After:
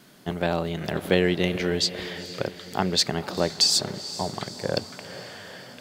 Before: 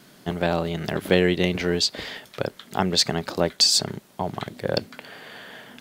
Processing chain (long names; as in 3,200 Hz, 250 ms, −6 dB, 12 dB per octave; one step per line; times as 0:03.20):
feedback delay with all-pass diffusion 457 ms, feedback 57%, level −14 dB
level −2 dB